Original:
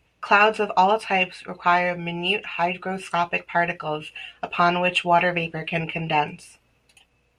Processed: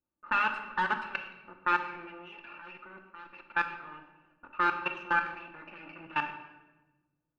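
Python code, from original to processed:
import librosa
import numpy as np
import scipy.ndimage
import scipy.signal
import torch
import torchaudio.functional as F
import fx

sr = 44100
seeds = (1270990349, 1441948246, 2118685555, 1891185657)

y = fx.lower_of_two(x, sr, delay_ms=0.74)
y = fx.env_lowpass(y, sr, base_hz=580.0, full_db=-16.5)
y = scipy.signal.sosfilt(scipy.signal.butter(2, 1600.0, 'lowpass', fs=sr, output='sos'), y)
y = fx.tilt_eq(y, sr, slope=4.5)
y = y + 0.54 * np.pad(y, (int(3.4 * sr / 1000.0), 0))[:len(y)]
y = fx.level_steps(y, sr, step_db=22)
y = fx.room_shoebox(y, sr, seeds[0], volume_m3=690.0, walls='mixed', distance_m=0.84)
y = F.gain(torch.from_numpy(y), -5.0).numpy()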